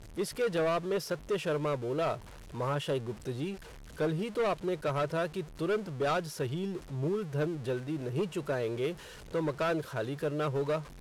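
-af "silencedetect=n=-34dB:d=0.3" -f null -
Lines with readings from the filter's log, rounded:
silence_start: 2.15
silence_end: 2.55 | silence_duration: 0.40
silence_start: 3.54
silence_end: 4.00 | silence_duration: 0.46
silence_start: 8.92
silence_end: 9.34 | silence_duration: 0.42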